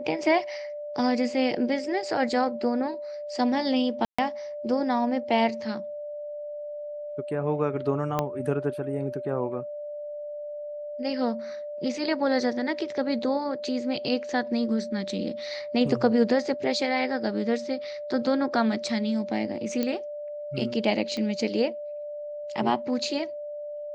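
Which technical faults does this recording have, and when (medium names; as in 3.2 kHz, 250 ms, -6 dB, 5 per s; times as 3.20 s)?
whine 590 Hz -33 dBFS
4.05–4.18 s: dropout 135 ms
8.19 s: pop -12 dBFS
19.83 s: pop -14 dBFS
21.17 s: pop -20 dBFS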